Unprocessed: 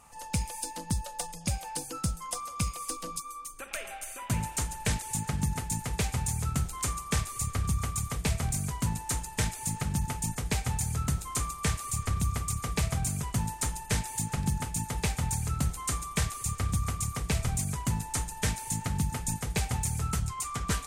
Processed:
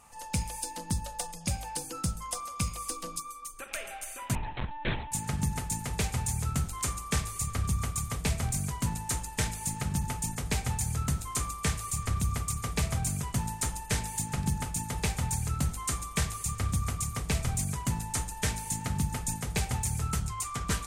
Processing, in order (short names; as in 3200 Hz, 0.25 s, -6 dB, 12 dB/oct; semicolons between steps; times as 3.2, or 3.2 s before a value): de-hum 53.21 Hz, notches 28; 4.35–5.12 LPC vocoder at 8 kHz pitch kept